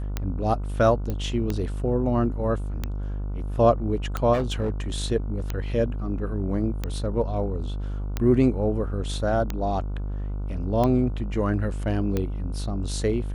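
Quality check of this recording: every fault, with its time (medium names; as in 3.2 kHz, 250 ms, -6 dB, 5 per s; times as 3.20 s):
buzz 50 Hz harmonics 30 -29 dBFS
tick 45 rpm -13 dBFS
1.10 s: pop -17 dBFS
4.33–4.70 s: clipped -20.5 dBFS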